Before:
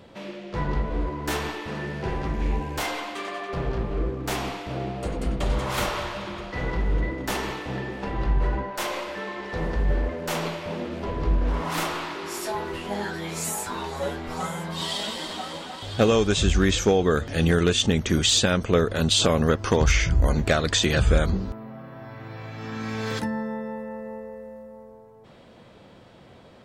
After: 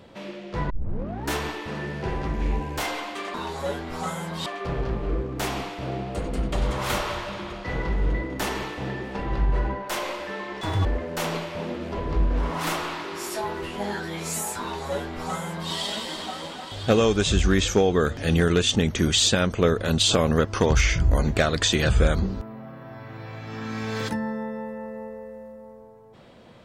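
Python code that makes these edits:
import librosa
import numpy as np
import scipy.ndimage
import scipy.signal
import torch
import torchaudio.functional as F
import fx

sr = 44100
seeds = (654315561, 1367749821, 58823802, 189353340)

y = fx.edit(x, sr, fx.tape_start(start_s=0.7, length_s=0.6),
    fx.speed_span(start_s=9.49, length_s=0.47, speed=1.94),
    fx.duplicate(start_s=13.71, length_s=1.12, to_s=3.34), tone=tone)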